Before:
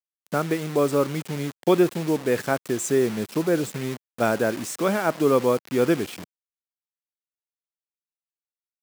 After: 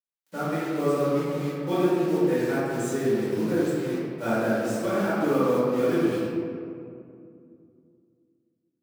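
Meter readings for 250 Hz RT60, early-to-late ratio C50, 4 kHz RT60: 3.3 s, -4.0 dB, 1.1 s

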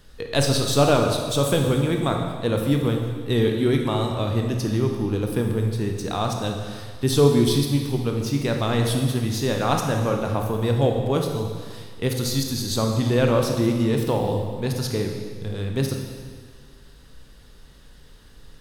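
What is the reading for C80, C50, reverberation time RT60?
5.5 dB, 3.5 dB, 1.8 s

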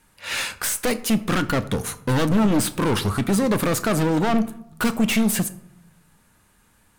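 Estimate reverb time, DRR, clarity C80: 0.80 s, 11.0 dB, 19.0 dB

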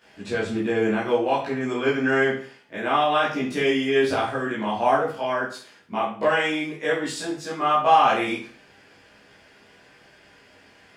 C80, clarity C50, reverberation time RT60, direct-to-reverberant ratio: 9.5 dB, 5.0 dB, 0.45 s, -10.5 dB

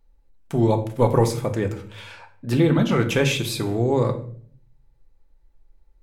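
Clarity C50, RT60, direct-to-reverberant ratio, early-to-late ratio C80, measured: 12.5 dB, 0.55 s, 5.0 dB, 15.5 dB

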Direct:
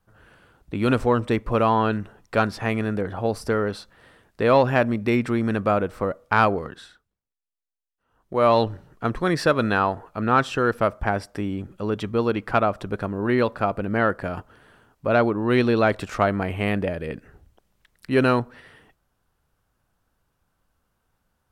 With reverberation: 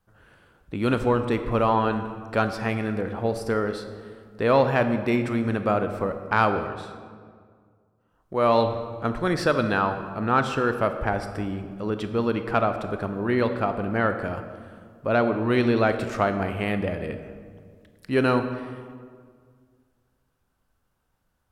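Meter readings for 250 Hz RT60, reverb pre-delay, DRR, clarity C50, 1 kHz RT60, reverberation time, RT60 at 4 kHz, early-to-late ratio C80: 2.3 s, 21 ms, 8.0 dB, 9.0 dB, 1.8 s, 1.9 s, 1.1 s, 10.0 dB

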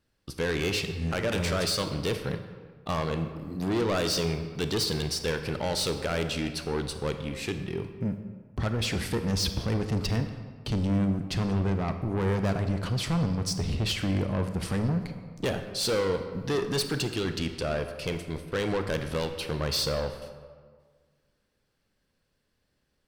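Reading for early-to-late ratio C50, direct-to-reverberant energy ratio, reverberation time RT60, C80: 8.5 dB, 7.5 dB, 1.7 s, 10.0 dB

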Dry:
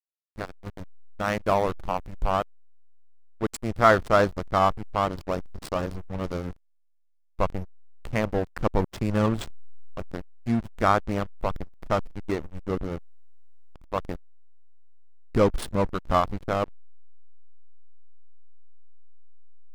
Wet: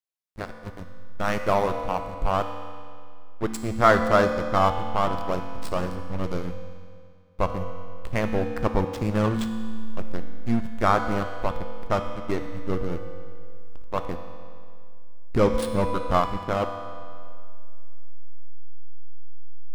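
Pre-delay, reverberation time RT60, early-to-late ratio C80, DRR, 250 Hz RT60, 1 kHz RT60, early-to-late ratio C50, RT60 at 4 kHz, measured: 4 ms, 2.2 s, 8.0 dB, 5.5 dB, 2.2 s, 2.2 s, 7.0 dB, 2.0 s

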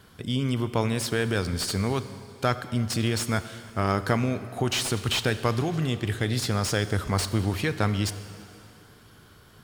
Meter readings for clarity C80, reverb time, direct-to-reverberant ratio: 13.0 dB, 2.7 s, 11.5 dB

